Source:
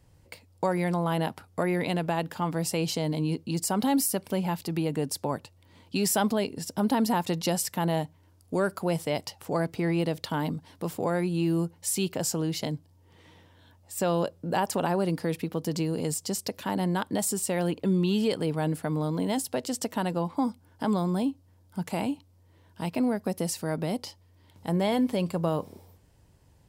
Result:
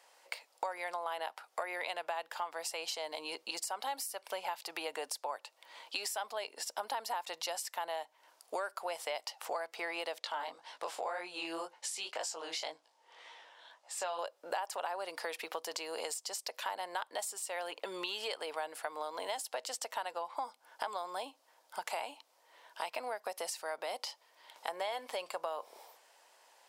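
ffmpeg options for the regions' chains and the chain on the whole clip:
ffmpeg -i in.wav -filter_complex "[0:a]asettb=1/sr,asplit=3[link_01][link_02][link_03];[link_01]atrim=end=10.194[link_04];[link_02]atrim=start=10.19:end=14.19,asetpts=PTS-STARTPTS,afade=type=in:duration=0.004:curve=qsin,afade=type=out:start_time=3.996:duration=0.004:curve=qsin,lowpass=8400,flanger=delay=17:depth=7.7:speed=1.9[link_05];[link_03]atrim=start=14.186[link_06];[link_04][link_05]acrossfade=duration=0.004:curve1=hsin:curve2=qsin[link_07];[link_07][link_06]acrossfade=duration=0.004:curve1=qsin:curve2=hsin,highpass=frequency=640:width=0.5412,highpass=frequency=640:width=1.3066,acompressor=threshold=-44dB:ratio=6,highshelf=frequency=10000:gain=-9,volume=8.5dB" out.wav

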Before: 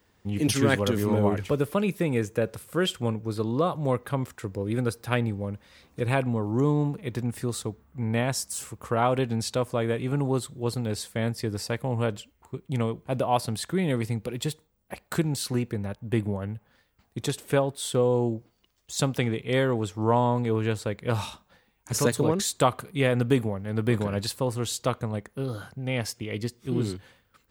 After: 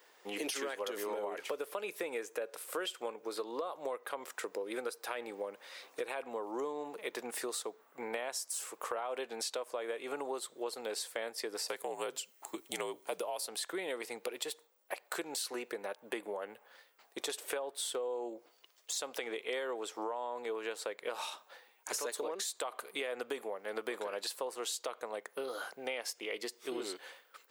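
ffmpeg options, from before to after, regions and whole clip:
ffmpeg -i in.wav -filter_complex "[0:a]asettb=1/sr,asplit=3[link_01][link_02][link_03];[link_01]atrim=end=11.684[link_04];[link_02]atrim=start=11.68:end=13.48,asetpts=PTS-STARTPTS,afade=type=in:duration=0.004:curve=qsin,afade=type=out:start_time=1.796:duration=0.004:curve=qsin,bass=frequency=250:gain=13,treble=frequency=4000:gain=11,afreqshift=-59[link_05];[link_03]atrim=start=13.476[link_06];[link_04][link_05]acrossfade=duration=0.004:curve1=hsin:curve2=qsin[link_07];[link_07][link_06]acrossfade=duration=0.004:curve1=qsin:curve2=hsin,highpass=frequency=430:width=0.5412,highpass=frequency=430:width=1.3066,alimiter=limit=-20dB:level=0:latency=1:release=88,acompressor=threshold=-41dB:ratio=6,volume=5dB" out.wav

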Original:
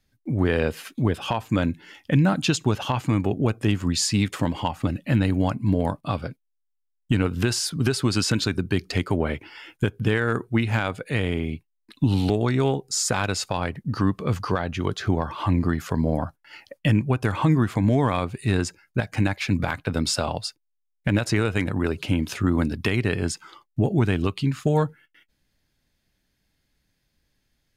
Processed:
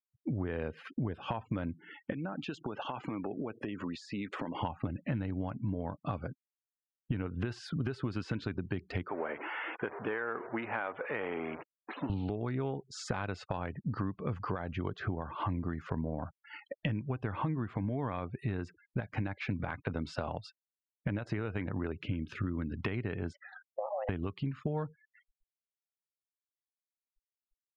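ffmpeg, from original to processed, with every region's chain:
ffmpeg -i in.wav -filter_complex "[0:a]asettb=1/sr,asplit=3[link_01][link_02][link_03];[link_01]atrim=end=2.124[link_04];[link_02]atrim=start=2.12:end=4.61,asetpts=PTS-STARTPTS,afade=type=in:duration=0.004:curve=qsin,afade=type=out:start_time=2.486:duration=0.004:curve=qsin,highpass=250,acompressor=threshold=-32dB:ratio=6:attack=3.2:release=140:knee=1:detection=peak[link_05];[link_03]atrim=start=4.606[link_06];[link_04][link_05]acrossfade=duration=0.004:curve1=hsin:curve2=qsin[link_07];[link_07][link_06]acrossfade=duration=0.004:curve1=qsin:curve2=hsin,asettb=1/sr,asplit=3[link_08][link_09][link_10];[link_08]atrim=end=9.084[link_11];[link_09]atrim=start=9.08:end=12.1,asetpts=PTS-STARTPTS,afade=type=in:duration=0.004:curve=qsin,afade=type=out:start_time=3.016:duration=0.004:curve=qsin,aeval=exprs='val(0)+0.5*0.0376*sgn(val(0))':channel_layout=same,highpass=490,lowpass=2100[link_12];[link_10]atrim=start=12.096[link_13];[link_11][link_12]acrossfade=duration=0.004:curve1=hsin:curve2=qsin[link_14];[link_14][link_13]acrossfade=duration=0.004:curve1=qsin:curve2=hsin,asettb=1/sr,asplit=3[link_15][link_16][link_17];[link_15]atrim=end=21.924[link_18];[link_16]atrim=start=21.92:end=22.76,asetpts=PTS-STARTPTS,afade=type=in:duration=0.004:curve=qsin,afade=type=out:start_time=0.836:duration=0.004:curve=qsin,equalizer=frequency=730:width_type=o:width=0.99:gain=-11.5,aeval=exprs='sgn(val(0))*max(abs(val(0))-0.0015,0)':channel_layout=same[link_19];[link_17]atrim=start=22.756[link_20];[link_18][link_19]acrossfade=duration=0.004:curve1=hsin:curve2=qsin[link_21];[link_21][link_20]acrossfade=duration=0.004:curve1=qsin:curve2=hsin,asettb=1/sr,asplit=3[link_22][link_23][link_24];[link_22]atrim=end=23.334[link_25];[link_23]atrim=start=23.33:end=24.09,asetpts=PTS-STARTPTS,afade=type=in:duration=0.004:curve=qsin,afade=type=out:start_time=0.756:duration=0.004:curve=qsin,lowpass=frequency=3200:poles=1,afreqshift=410,acompressor=threshold=-30dB:ratio=6:attack=3.2:release=140:knee=1:detection=peak[link_26];[link_24]atrim=start=24.086[link_27];[link_25][link_26]acrossfade=duration=0.004:curve1=hsin:curve2=qsin[link_28];[link_28][link_27]acrossfade=duration=0.004:curve1=qsin:curve2=hsin,afftfilt=real='re*gte(hypot(re,im),0.00708)':imag='im*gte(hypot(re,im),0.00708)':win_size=1024:overlap=0.75,lowpass=2100,acompressor=threshold=-32dB:ratio=6" out.wav

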